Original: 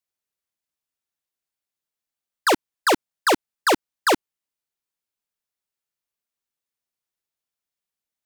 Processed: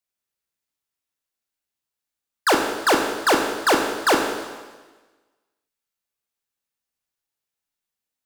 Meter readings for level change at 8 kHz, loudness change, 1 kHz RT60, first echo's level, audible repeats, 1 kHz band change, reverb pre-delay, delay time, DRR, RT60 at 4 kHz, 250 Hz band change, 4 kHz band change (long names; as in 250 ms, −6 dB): +2.0 dB, +1.5 dB, 1.3 s, no echo audible, no echo audible, +2.0 dB, 18 ms, no echo audible, 2.0 dB, 1.3 s, +2.5 dB, +2.0 dB